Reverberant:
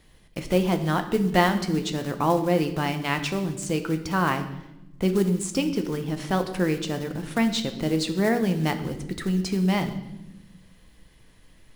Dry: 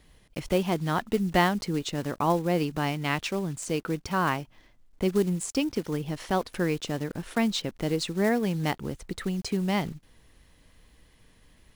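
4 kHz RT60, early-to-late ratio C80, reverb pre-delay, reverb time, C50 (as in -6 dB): 0.85 s, 13.0 dB, 6 ms, 0.95 s, 10.5 dB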